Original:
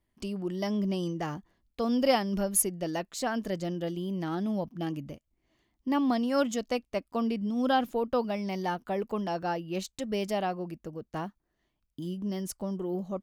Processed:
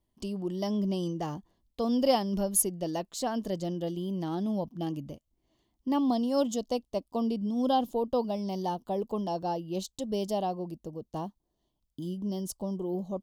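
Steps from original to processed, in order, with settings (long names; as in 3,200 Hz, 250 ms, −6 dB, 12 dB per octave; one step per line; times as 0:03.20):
flat-topped bell 1,800 Hz −9 dB 1.2 octaves, from 0:05.99 −16 dB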